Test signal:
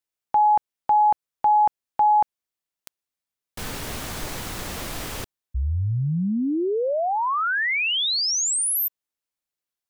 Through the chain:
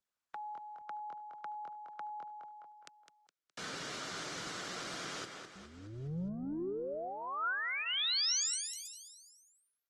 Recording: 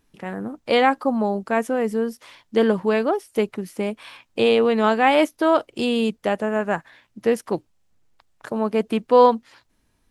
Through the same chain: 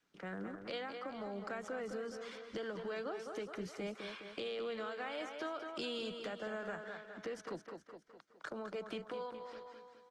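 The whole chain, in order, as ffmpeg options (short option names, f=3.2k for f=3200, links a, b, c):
-filter_complex "[0:a]acrossover=split=390|1300[a][b][c];[a]asoftclip=type=tanh:threshold=-24dB[d];[d][b][c]amix=inputs=3:normalize=0,adynamicequalizer=threshold=0.0141:dfrequency=290:dqfactor=1.8:tfrequency=290:tqfactor=1.8:attack=5:release=100:ratio=0.375:range=2:mode=cutabove:tftype=bell,acompressor=threshold=-23dB:ratio=16:attack=1.4:release=434:knee=1:detection=peak,bandreject=f=2.6k:w=16,asplit=2[e][f];[f]aecho=0:1:208|416|624|832|1040:0.355|0.17|0.0817|0.0392|0.0188[g];[e][g]amix=inputs=2:normalize=0,acrossover=split=250|3300[h][i][j];[i]acompressor=threshold=-38dB:ratio=2:attack=1.8:release=117:knee=2.83:detection=peak[k];[h][k][j]amix=inputs=3:normalize=0,highpass=f=170:w=0.5412,highpass=f=170:w=1.3066,equalizer=f=230:t=q:w=4:g=-8,equalizer=f=870:t=q:w=4:g=-5,equalizer=f=1.4k:t=q:w=4:g=7,lowpass=f=6.9k:w=0.5412,lowpass=f=6.9k:w=1.3066,volume=-6dB" -ar 48000 -c:a libopus -b:a 20k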